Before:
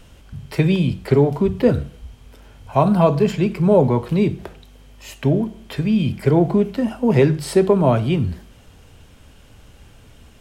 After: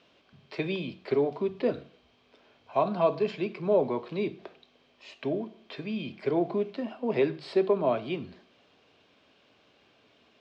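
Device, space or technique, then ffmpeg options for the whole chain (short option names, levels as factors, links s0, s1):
phone earpiece: -filter_complex "[0:a]highpass=420,equalizer=f=500:t=q:w=4:g=-5,equalizer=f=870:t=q:w=4:g=-8,equalizer=f=1400:t=q:w=4:g=-7,equalizer=f=1900:t=q:w=4:g=-6,equalizer=f=3000:t=q:w=4:g=-5,lowpass=f=4200:w=0.5412,lowpass=f=4200:w=1.3066,asettb=1/sr,asplit=3[s0][s1][s2];[s0]atrim=end=6.824[s3];[s1]atrim=start=6.82:end=8.02,asetpts=PTS-STARTPTS,afade=t=in:d=0.004:c=qsin,afade=t=out:st=1.196:d=0.004:c=qsin,equalizer=f=6100:t=o:w=0.41:g=-5.5[s4];[s2]atrim=start=8.016[s5];[s3][s4]acrossfade=d=0.004:c1=hsin:c2=qsin[s6];[s6][s5]acrossfade=d=0.004:c1=qsin:c2=hsin,volume=0.631"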